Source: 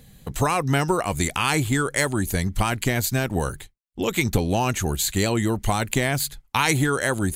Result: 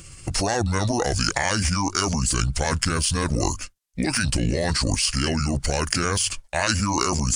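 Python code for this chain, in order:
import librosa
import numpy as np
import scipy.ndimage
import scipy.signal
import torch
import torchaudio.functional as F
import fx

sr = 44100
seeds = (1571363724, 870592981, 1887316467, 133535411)

p1 = fx.pitch_heads(x, sr, semitones=-6.5)
p2 = fx.high_shelf(p1, sr, hz=4000.0, db=9.0)
p3 = fx.over_compress(p2, sr, threshold_db=-27.0, ratio=-0.5)
p4 = p2 + F.gain(torch.from_numpy(p3), 2.5).numpy()
y = F.gain(torch.from_numpy(p4), -4.0).numpy()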